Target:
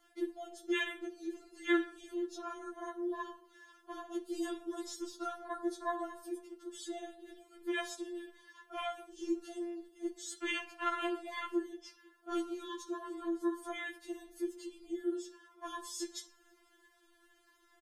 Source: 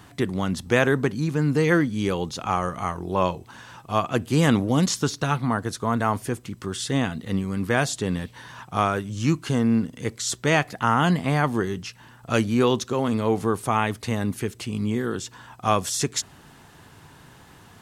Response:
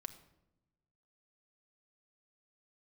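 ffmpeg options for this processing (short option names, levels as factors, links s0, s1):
-filter_complex "[0:a]bandreject=f=60:t=h:w=6,bandreject=f=120:t=h:w=6,bandreject=f=180:t=h:w=6,afwtdn=0.0562,acrossover=split=130|3000[s0][s1][s2];[s1]acompressor=threshold=0.0158:ratio=4[s3];[s0][s3][s2]amix=inputs=3:normalize=0,asplit=2[s4][s5];[s5]adelay=495.6,volume=0.0316,highshelf=f=4000:g=-11.2[s6];[s4][s6]amix=inputs=2:normalize=0[s7];[1:a]atrim=start_sample=2205,afade=t=out:st=0.37:d=0.01,atrim=end_sample=16758,asetrate=61740,aresample=44100[s8];[s7][s8]afir=irnorm=-1:irlink=0,afftfilt=real='re*4*eq(mod(b,16),0)':imag='im*4*eq(mod(b,16),0)':win_size=2048:overlap=0.75,volume=2.66"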